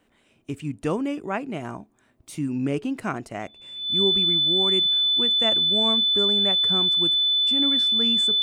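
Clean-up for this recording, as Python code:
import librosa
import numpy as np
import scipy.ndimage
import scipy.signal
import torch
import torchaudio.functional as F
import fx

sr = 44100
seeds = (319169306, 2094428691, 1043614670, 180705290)

y = fx.notch(x, sr, hz=3500.0, q=30.0)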